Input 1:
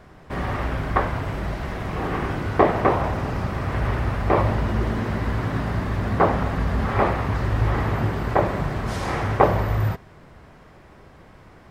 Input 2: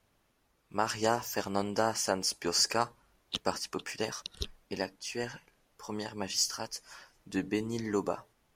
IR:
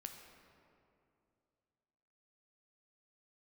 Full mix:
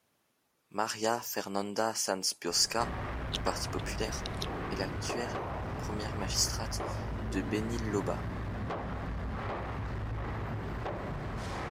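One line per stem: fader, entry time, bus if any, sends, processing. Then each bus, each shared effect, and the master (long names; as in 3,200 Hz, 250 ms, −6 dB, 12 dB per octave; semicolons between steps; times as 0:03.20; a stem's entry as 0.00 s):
−2.5 dB, 2.50 s, no send, high-shelf EQ 9,300 Hz −10.5 dB; downward compressor 3 to 1, threshold −31 dBFS, peak gain reduction 15.5 dB; soft clipping −28.5 dBFS, distortion −13 dB
−2.0 dB, 0.00 s, no send, high-pass filter 130 Hz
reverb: not used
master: high-shelf EQ 6,200 Hz +4.5 dB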